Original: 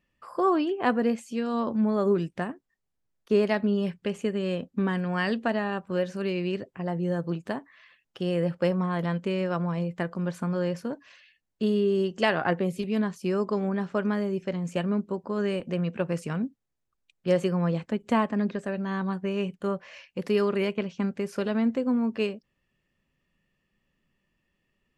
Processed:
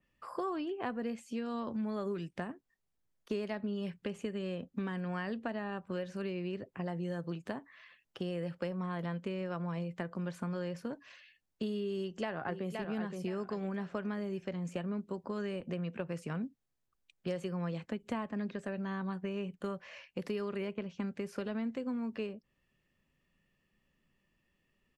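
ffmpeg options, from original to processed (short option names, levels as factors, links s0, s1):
-filter_complex "[0:a]asplit=2[s0][s1];[s1]afade=t=in:st=11.95:d=0.01,afade=t=out:st=12.71:d=0.01,aecho=0:1:520|1040|1560|2080:0.375837|0.112751|0.0338254|0.0101476[s2];[s0][s2]amix=inputs=2:normalize=0,acrossover=split=120|1800[s3][s4][s5];[s3]acompressor=threshold=0.00282:ratio=4[s6];[s4]acompressor=threshold=0.0178:ratio=4[s7];[s5]acompressor=threshold=0.00355:ratio=4[s8];[s6][s7][s8]amix=inputs=3:normalize=0,adynamicequalizer=threshold=0.00141:dfrequency=3400:dqfactor=0.7:tfrequency=3400:tqfactor=0.7:attack=5:release=100:ratio=0.375:range=2:mode=cutabove:tftype=highshelf,volume=0.841"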